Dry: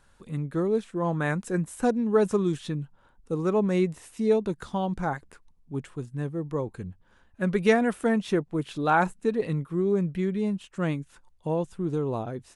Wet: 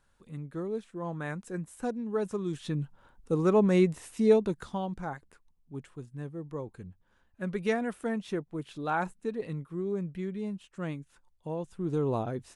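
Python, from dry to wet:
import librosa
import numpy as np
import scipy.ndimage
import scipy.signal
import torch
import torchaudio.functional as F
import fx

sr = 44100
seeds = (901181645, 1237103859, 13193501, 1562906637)

y = fx.gain(x, sr, db=fx.line((2.41, -9.0), (2.82, 1.0), (4.3, 1.0), (5.02, -8.0), (11.59, -8.0), (12.05, 0.0)))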